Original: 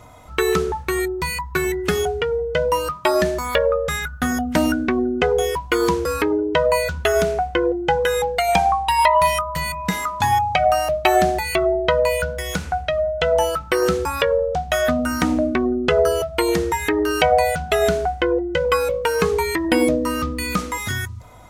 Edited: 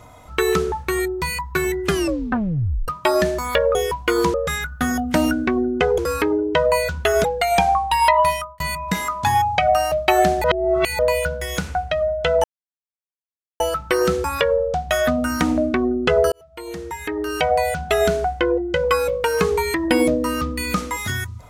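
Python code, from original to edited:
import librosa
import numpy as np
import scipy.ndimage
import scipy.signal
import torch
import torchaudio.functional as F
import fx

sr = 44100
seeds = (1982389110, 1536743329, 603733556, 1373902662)

y = fx.edit(x, sr, fx.tape_stop(start_s=1.86, length_s=1.02),
    fx.move(start_s=5.39, length_s=0.59, to_s=3.75),
    fx.cut(start_s=7.24, length_s=0.97),
    fx.fade_out_span(start_s=9.17, length_s=0.4),
    fx.reverse_span(start_s=11.41, length_s=0.55),
    fx.insert_silence(at_s=13.41, length_s=1.16),
    fx.fade_in_span(start_s=16.13, length_s=1.65), tone=tone)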